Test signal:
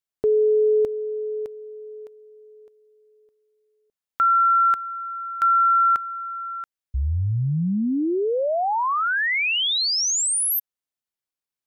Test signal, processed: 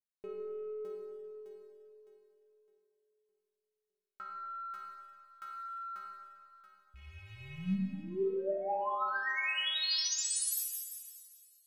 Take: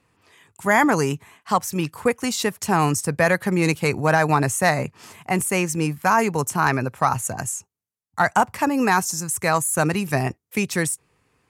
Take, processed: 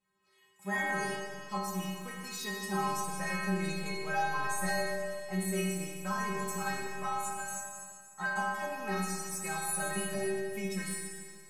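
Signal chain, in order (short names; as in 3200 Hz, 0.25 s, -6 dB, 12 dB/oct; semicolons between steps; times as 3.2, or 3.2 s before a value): rattling part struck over -29 dBFS, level -28 dBFS; in parallel at -10 dB: soft clip -19.5 dBFS; on the sum: metallic resonator 190 Hz, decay 0.82 s, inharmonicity 0.008; Schroeder reverb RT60 2.1 s, DRR 1 dB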